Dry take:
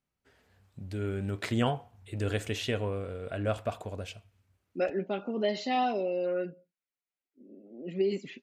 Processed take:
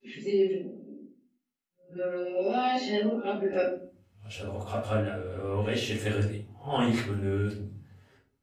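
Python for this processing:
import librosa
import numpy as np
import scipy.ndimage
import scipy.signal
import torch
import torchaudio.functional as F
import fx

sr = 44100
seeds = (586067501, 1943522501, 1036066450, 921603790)

y = np.flip(x).copy()
y = fx.room_shoebox(y, sr, seeds[0], volume_m3=330.0, walls='furnished', distance_m=4.1)
y = fx.dynamic_eq(y, sr, hz=130.0, q=1.0, threshold_db=-34.0, ratio=4.0, max_db=-6)
y = y * 10.0 ** (-4.5 / 20.0)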